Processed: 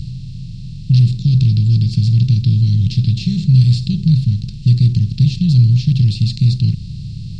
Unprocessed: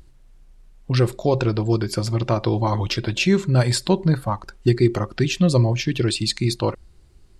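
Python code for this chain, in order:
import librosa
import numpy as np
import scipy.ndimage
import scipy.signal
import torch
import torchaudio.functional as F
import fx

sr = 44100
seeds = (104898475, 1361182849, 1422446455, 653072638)

y = fx.bin_compress(x, sr, power=0.4)
y = scipy.signal.sosfilt(scipy.signal.cheby1(3, 1.0, [150.0, 4000.0], 'bandstop', fs=sr, output='sos'), y)
y = fx.spacing_loss(y, sr, db_at_10k=32)
y = y * librosa.db_to_amplitude(7.0)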